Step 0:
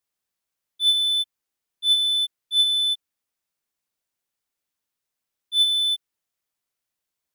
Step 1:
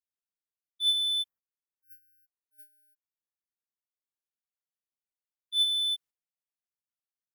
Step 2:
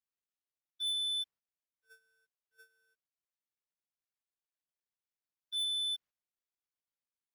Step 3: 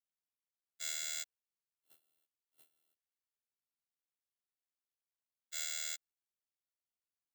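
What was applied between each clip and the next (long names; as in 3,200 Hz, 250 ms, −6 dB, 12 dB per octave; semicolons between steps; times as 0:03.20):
time-frequency box erased 0:01.28–0:04.01, 2,000–11,000 Hz; noise gate −44 dBFS, range −13 dB; level −6.5 dB
running median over 5 samples; soft clipping −32 dBFS, distortion −11 dB
samples in bit-reversed order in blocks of 256 samples; ring modulation 39 Hz; level −3 dB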